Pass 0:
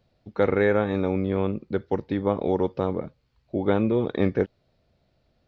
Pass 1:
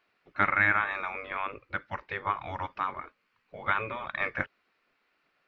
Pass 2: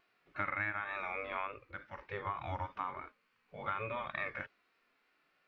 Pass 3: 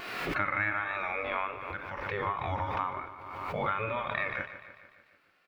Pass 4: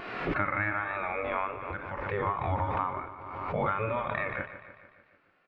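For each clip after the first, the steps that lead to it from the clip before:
spectral gate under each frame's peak -10 dB weak; high-order bell 1.7 kHz +12.5 dB; trim -4.5 dB
harmonic-percussive split percussive -16 dB; compression 6:1, threshold -36 dBFS, peak gain reduction 14 dB; vibrato 3.4 Hz 34 cents; trim +2.5 dB
on a send: feedback delay 148 ms, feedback 58%, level -12.5 dB; on the sum: swell ahead of each attack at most 36 dB/s; trim +5.5 dB
tape spacing loss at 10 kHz 32 dB; trim +5 dB

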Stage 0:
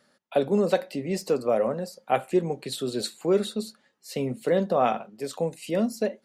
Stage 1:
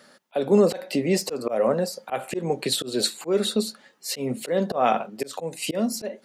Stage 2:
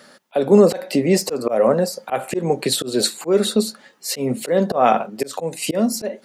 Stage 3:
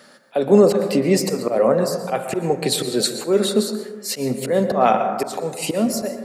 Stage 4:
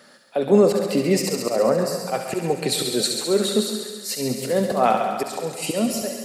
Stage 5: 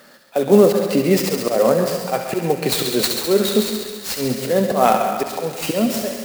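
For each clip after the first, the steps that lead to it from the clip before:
high-pass 200 Hz 6 dB/octave; slow attack 242 ms; in parallel at 0 dB: compression, threshold -37 dBFS, peak gain reduction 16 dB; on the sum: trim +6 dB
dynamic bell 3.2 kHz, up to -4 dB, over -44 dBFS, Q 1.3; trim +6 dB
plate-style reverb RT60 1.3 s, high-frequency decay 0.3×, pre-delay 105 ms, DRR 7.5 dB; trim -1 dB
feedback echo behind a high-pass 68 ms, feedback 79%, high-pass 2 kHz, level -5 dB; trim -2.5 dB
sampling jitter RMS 0.027 ms; trim +3.5 dB

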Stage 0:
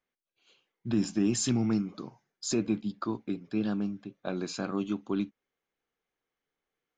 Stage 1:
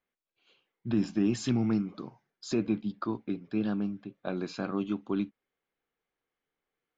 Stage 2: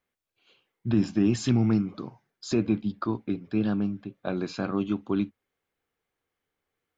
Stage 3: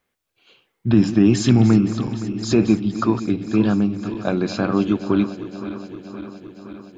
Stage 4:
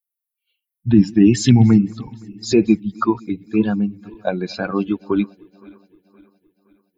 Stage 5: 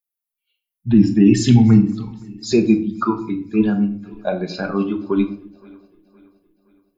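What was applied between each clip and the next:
low-pass 3.9 kHz 12 dB/octave
peaking EQ 89 Hz +11.5 dB 0.55 oct; trim +3.5 dB
backward echo that repeats 259 ms, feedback 81%, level -13 dB; trim +8.5 dB
expander on every frequency bin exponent 2; trim +5.5 dB
simulated room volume 580 m³, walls furnished, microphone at 1.3 m; trim -2 dB

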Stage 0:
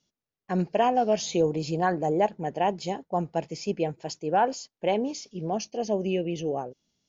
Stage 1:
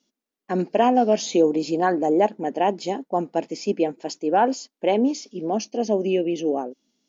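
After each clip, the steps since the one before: resonant low shelf 170 Hz -13.5 dB, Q 3; trim +3 dB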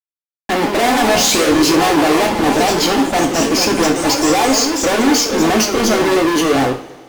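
fuzz box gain 41 dB, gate -50 dBFS; ever faster or slower copies 179 ms, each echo +2 st, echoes 3, each echo -6 dB; two-slope reverb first 0.4 s, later 2.1 s, from -19 dB, DRR 2 dB; trim -2 dB

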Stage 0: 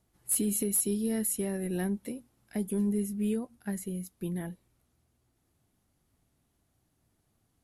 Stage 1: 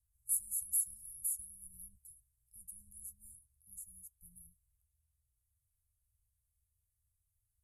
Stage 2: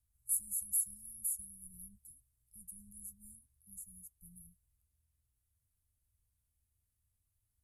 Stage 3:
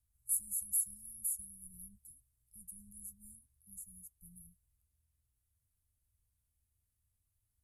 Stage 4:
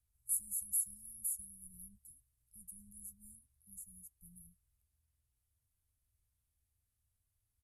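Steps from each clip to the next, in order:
inverse Chebyshev band-stop 220–3600 Hz, stop band 50 dB; trim -4 dB
peaking EQ 230 Hz +15 dB 0.87 oct
no audible change
resampled via 32 kHz; trim -1.5 dB

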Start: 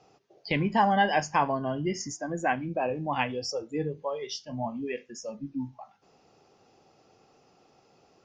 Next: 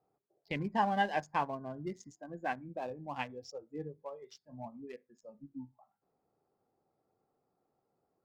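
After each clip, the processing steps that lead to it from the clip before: local Wiener filter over 15 samples; upward expansion 1.5:1, over -42 dBFS; trim -6 dB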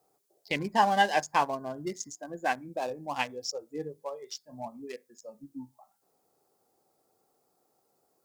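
tone controls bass -8 dB, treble +13 dB; trim +7 dB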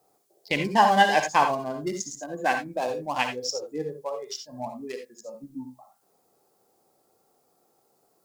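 reverberation, pre-delay 48 ms, DRR 6 dB; trim +4.5 dB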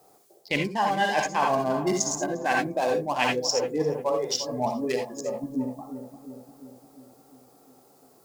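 reverse; compression 12:1, threshold -30 dBFS, peak gain reduction 17.5 dB; reverse; filtered feedback delay 351 ms, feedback 64%, low-pass 1 kHz, level -10 dB; trim +9 dB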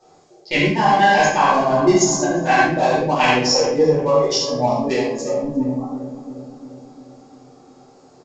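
simulated room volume 100 m³, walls mixed, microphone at 2.6 m; resampled via 16 kHz; trim -1 dB

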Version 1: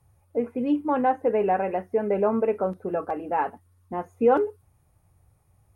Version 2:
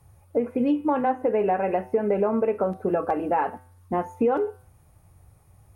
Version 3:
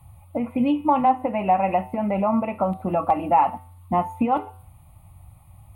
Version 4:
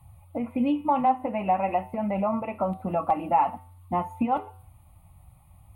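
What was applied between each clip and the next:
compression 6:1, threshold -27 dBFS, peak gain reduction 12 dB; de-hum 126.6 Hz, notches 33; trim +7.5 dB
static phaser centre 1.6 kHz, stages 6; trim +7.5 dB
flange 0.47 Hz, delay 1 ms, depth 4.5 ms, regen -64%

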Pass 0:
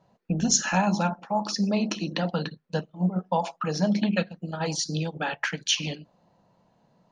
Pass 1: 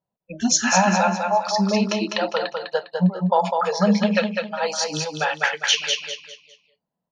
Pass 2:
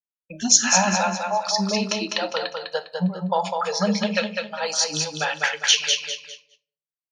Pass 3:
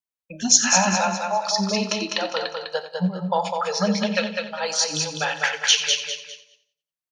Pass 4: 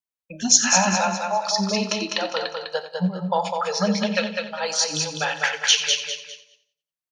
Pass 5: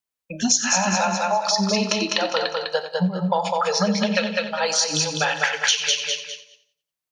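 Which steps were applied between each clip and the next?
spectral noise reduction 29 dB; treble shelf 7.7 kHz -11 dB; feedback delay 202 ms, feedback 33%, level -4.5 dB; trim +7 dB
expander -41 dBFS; treble shelf 3.2 kHz +10.5 dB; simulated room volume 490 m³, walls furnished, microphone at 0.41 m; trim -4 dB
feedback delay 89 ms, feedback 37%, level -14 dB
no audible change
compression 5:1, threshold -22 dBFS, peak gain reduction 11.5 dB; trim +5 dB

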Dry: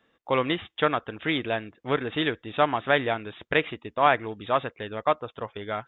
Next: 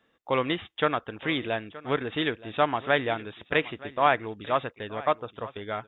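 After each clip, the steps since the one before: delay 922 ms -18.5 dB; trim -1.5 dB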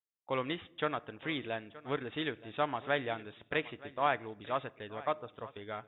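expander -43 dBFS; on a send at -19.5 dB: reverberation RT60 0.95 s, pre-delay 7 ms; on the sum: trim -8.5 dB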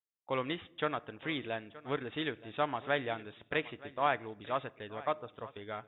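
no audible change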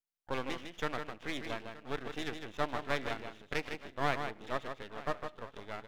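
delay 155 ms -7 dB; half-wave rectifier; trim +1 dB

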